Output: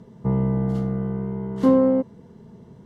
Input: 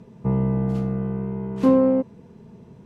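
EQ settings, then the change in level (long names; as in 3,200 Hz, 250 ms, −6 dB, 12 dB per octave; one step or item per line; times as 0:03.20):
Butterworth band-reject 2,500 Hz, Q 6
0.0 dB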